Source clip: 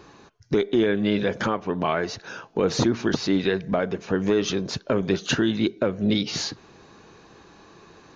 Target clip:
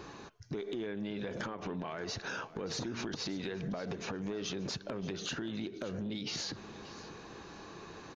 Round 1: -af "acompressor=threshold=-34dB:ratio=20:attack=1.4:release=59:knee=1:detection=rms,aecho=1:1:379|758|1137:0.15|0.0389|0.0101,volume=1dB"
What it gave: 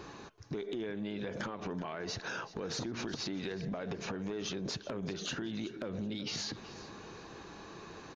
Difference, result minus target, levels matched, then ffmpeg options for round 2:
echo 0.202 s early
-af "acompressor=threshold=-34dB:ratio=20:attack=1.4:release=59:knee=1:detection=rms,aecho=1:1:581|1162|1743:0.15|0.0389|0.0101,volume=1dB"

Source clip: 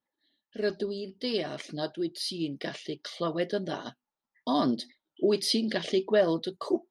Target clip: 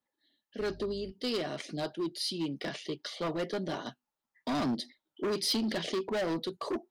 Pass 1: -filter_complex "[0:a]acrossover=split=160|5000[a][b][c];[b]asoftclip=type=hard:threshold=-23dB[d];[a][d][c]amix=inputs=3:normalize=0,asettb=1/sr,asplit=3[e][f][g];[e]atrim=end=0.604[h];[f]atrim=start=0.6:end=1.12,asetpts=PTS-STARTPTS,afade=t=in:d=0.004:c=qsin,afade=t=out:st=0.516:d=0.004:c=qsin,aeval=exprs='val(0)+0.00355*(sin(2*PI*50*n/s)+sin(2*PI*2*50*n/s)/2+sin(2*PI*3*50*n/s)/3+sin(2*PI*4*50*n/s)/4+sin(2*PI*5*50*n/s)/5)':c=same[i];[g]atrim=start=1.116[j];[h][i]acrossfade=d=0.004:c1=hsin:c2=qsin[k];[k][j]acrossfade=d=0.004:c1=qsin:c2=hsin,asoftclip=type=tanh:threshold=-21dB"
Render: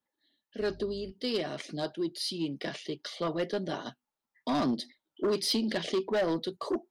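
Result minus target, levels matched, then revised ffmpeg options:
hard clip: distortion -6 dB
-filter_complex "[0:a]acrossover=split=160|5000[a][b][c];[b]asoftclip=type=hard:threshold=-29dB[d];[a][d][c]amix=inputs=3:normalize=0,asettb=1/sr,asplit=3[e][f][g];[e]atrim=end=0.604[h];[f]atrim=start=0.6:end=1.12,asetpts=PTS-STARTPTS,afade=t=in:d=0.004:c=qsin,afade=t=out:st=0.516:d=0.004:c=qsin,aeval=exprs='val(0)+0.00355*(sin(2*PI*50*n/s)+sin(2*PI*2*50*n/s)/2+sin(2*PI*3*50*n/s)/3+sin(2*PI*4*50*n/s)/4+sin(2*PI*5*50*n/s)/5)':c=same[i];[g]atrim=start=1.116[j];[h][i]acrossfade=d=0.004:c1=hsin:c2=qsin[k];[k][j]acrossfade=d=0.004:c1=qsin:c2=hsin,asoftclip=type=tanh:threshold=-21dB"

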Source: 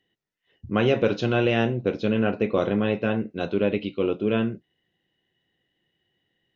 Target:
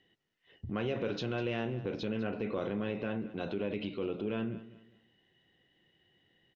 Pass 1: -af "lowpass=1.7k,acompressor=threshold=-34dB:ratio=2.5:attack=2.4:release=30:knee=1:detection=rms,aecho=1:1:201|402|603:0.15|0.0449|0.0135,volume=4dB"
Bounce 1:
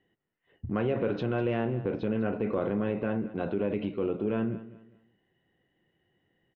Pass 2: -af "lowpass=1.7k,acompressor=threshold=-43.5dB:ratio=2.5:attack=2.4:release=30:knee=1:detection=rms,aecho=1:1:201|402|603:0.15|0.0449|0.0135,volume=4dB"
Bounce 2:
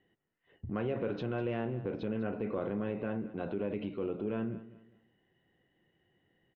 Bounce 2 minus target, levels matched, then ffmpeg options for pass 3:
2000 Hz band -3.5 dB
-af "lowpass=5.7k,acompressor=threshold=-43.5dB:ratio=2.5:attack=2.4:release=30:knee=1:detection=rms,aecho=1:1:201|402|603:0.15|0.0449|0.0135,volume=4dB"

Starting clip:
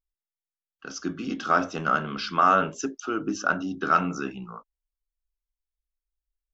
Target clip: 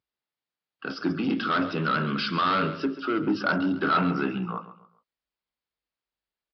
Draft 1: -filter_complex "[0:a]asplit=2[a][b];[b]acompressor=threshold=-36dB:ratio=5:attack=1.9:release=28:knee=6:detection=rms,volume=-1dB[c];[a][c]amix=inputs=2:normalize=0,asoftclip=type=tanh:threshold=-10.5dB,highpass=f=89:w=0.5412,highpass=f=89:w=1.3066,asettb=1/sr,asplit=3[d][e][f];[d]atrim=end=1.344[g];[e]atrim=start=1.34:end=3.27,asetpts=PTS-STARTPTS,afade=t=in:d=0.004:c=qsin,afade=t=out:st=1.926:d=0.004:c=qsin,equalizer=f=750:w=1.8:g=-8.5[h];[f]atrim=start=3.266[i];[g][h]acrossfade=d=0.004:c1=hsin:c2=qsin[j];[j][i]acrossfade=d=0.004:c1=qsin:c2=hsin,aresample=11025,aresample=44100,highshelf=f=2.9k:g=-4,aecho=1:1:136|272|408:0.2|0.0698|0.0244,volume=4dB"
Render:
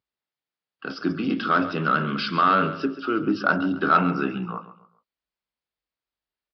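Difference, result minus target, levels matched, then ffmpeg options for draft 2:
soft clip: distortion -11 dB
-filter_complex "[0:a]asplit=2[a][b];[b]acompressor=threshold=-36dB:ratio=5:attack=1.9:release=28:knee=6:detection=rms,volume=-1dB[c];[a][c]amix=inputs=2:normalize=0,asoftclip=type=tanh:threshold=-21dB,highpass=f=89:w=0.5412,highpass=f=89:w=1.3066,asettb=1/sr,asplit=3[d][e][f];[d]atrim=end=1.344[g];[e]atrim=start=1.34:end=3.27,asetpts=PTS-STARTPTS,afade=t=in:d=0.004:c=qsin,afade=t=out:st=1.926:d=0.004:c=qsin,equalizer=f=750:w=1.8:g=-8.5[h];[f]atrim=start=3.266[i];[g][h]acrossfade=d=0.004:c1=hsin:c2=qsin[j];[j][i]acrossfade=d=0.004:c1=qsin:c2=hsin,aresample=11025,aresample=44100,highshelf=f=2.9k:g=-4,aecho=1:1:136|272|408:0.2|0.0698|0.0244,volume=4dB"

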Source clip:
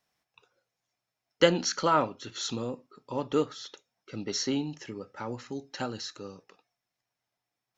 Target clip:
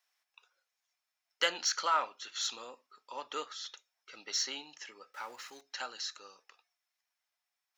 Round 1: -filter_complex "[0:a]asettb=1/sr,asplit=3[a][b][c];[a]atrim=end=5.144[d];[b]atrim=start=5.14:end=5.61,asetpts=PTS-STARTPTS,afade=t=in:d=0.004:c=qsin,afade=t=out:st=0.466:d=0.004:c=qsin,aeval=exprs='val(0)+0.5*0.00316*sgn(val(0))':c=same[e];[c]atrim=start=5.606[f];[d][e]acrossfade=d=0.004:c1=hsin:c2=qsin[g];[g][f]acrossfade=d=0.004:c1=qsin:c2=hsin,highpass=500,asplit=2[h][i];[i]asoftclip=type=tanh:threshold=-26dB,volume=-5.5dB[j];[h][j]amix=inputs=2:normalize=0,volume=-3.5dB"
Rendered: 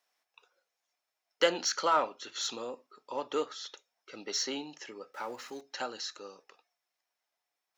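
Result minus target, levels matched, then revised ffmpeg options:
500 Hz band +8.0 dB
-filter_complex "[0:a]asettb=1/sr,asplit=3[a][b][c];[a]atrim=end=5.144[d];[b]atrim=start=5.14:end=5.61,asetpts=PTS-STARTPTS,afade=t=in:d=0.004:c=qsin,afade=t=out:st=0.466:d=0.004:c=qsin,aeval=exprs='val(0)+0.5*0.00316*sgn(val(0))':c=same[e];[c]atrim=start=5.606[f];[d][e]acrossfade=d=0.004:c1=hsin:c2=qsin[g];[g][f]acrossfade=d=0.004:c1=qsin:c2=hsin,highpass=1.1k,asplit=2[h][i];[i]asoftclip=type=tanh:threshold=-26dB,volume=-5.5dB[j];[h][j]amix=inputs=2:normalize=0,volume=-3.5dB"

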